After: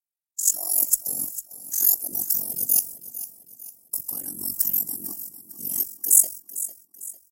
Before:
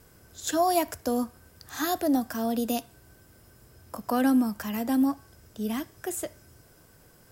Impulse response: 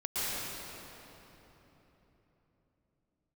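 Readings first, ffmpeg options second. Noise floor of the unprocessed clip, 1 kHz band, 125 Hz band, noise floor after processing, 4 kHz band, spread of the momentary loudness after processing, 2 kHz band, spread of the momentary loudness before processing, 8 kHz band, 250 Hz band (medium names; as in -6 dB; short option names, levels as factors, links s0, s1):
-57 dBFS, under -20 dB, -6.0 dB, -84 dBFS, -2.0 dB, 19 LU, under -15 dB, 13 LU, +17.0 dB, -20.5 dB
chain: -filter_complex "[0:a]agate=range=0.00178:threshold=0.00562:ratio=16:detection=peak,bandreject=f=3800:w=7.5,afftfilt=real='hypot(re,im)*cos(2*PI*random(0))':imag='hypot(re,im)*sin(2*PI*random(1))':win_size=512:overlap=0.75,equalizer=f=1400:w=1.4:g=-8,areverse,acompressor=threshold=0.0141:ratio=12,areverse,aeval=exprs='val(0)*sin(2*PI*23*n/s)':c=same,aexciter=amount=15.2:drive=6.7:freq=5700,highshelf=f=2100:g=8,asplit=2[s0][s1];[s1]aecho=0:1:451|902|1353|1804:0.2|0.0878|0.0386|0.017[s2];[s0][s2]amix=inputs=2:normalize=0,volume=0.794"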